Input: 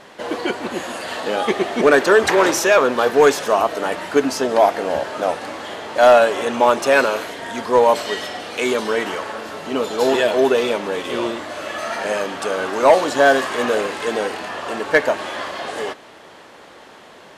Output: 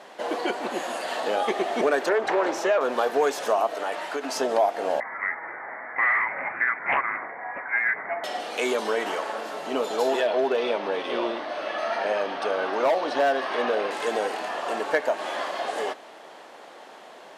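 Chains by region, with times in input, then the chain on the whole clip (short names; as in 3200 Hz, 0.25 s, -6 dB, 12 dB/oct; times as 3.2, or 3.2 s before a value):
2.09–2.81 LPF 2000 Hz 6 dB/oct + Doppler distortion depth 0.14 ms
3.75–4.36 LPF 2200 Hz 6 dB/oct + tilt +3 dB/oct + compressor, threshold -21 dBFS
5–8.24 HPF 690 Hz + inverted band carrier 2600 Hz + Doppler distortion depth 0.52 ms
10.2–13.91 polynomial smoothing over 15 samples + hard clip -10 dBFS
whole clip: HPF 250 Hz 12 dB/oct; bell 720 Hz +6 dB 0.68 oct; compressor 2.5:1, threshold -17 dBFS; gain -4.5 dB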